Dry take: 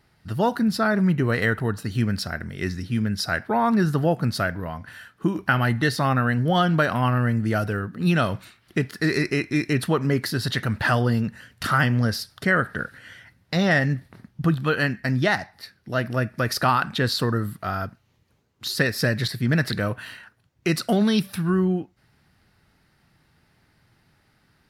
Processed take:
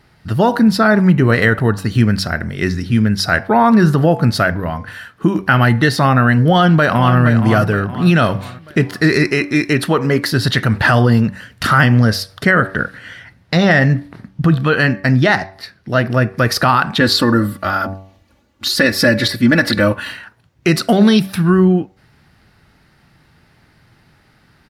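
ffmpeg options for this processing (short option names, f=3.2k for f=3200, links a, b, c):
-filter_complex "[0:a]asplit=2[a][b];[b]afade=t=in:st=6.51:d=0.01,afade=t=out:st=7.17:d=0.01,aecho=0:1:470|940|1410|1880|2350:0.316228|0.142302|0.0640361|0.0288163|0.0129673[c];[a][c]amix=inputs=2:normalize=0,asettb=1/sr,asplit=3[d][e][f];[d]atrim=end=9.284[g];[e]atrim=start=9.28:end=10.33,asetpts=PTS-STARTPTS,afade=t=in:d=0.004:c=qsin,afade=t=out:st=1.046:d=0.004:c=qsin,lowshelf=f=200:g=-8[h];[f]atrim=start=10.326[i];[g][h]acrossfade=d=0.004:c1=hsin:c2=qsin[j];[j][i]acrossfade=d=0.004:c1=qsin:c2=hsin,asettb=1/sr,asplit=3[k][l][m];[k]atrim=end=12.514[n];[l]atrim=start=12.51:end=16.37,asetpts=PTS-STARTPTS,afade=t=in:d=0.004:c=qsin,afade=t=out:st=3.856:d=0.004:c=qsin,highshelf=f=11k:g=-7[o];[m]atrim=start=16.366[p];[n][o]acrossfade=d=0.004:c1=hsin:c2=qsin[q];[q][p]acrossfade=d=0.004:c1=qsin:c2=hsin,asettb=1/sr,asplit=3[r][s][t];[r]atrim=end=17.004[u];[s]atrim=start=17:end=20.12,asetpts=PTS-STARTPTS,afade=t=in:d=0.004:c=qsin,afade=t=out:st=3.116:d=0.004:c=qsin,aecho=1:1:3.5:0.82,atrim=end_sample=137592[v];[t]atrim=start=20.116[w];[u][v]acrossfade=d=0.004:c1=hsin:c2=qsin[x];[x][w]acrossfade=d=0.004:c1=qsin:c2=hsin,highshelf=f=6.4k:g=-5.5,bandreject=f=95.67:t=h:w=4,bandreject=f=191.34:t=h:w=4,bandreject=f=287.01:t=h:w=4,bandreject=f=382.68:t=h:w=4,bandreject=f=478.35:t=h:w=4,bandreject=f=574.02:t=h:w=4,bandreject=f=669.69:t=h:w=4,bandreject=f=765.36:t=h:w=4,bandreject=f=861.03:t=h:w=4,bandreject=f=956.7:t=h:w=4,bandreject=f=1.05237k:t=h:w=4,bandreject=f=1.14804k:t=h:w=4,alimiter=level_in=11.5dB:limit=-1dB:release=50:level=0:latency=1,volume=-1dB"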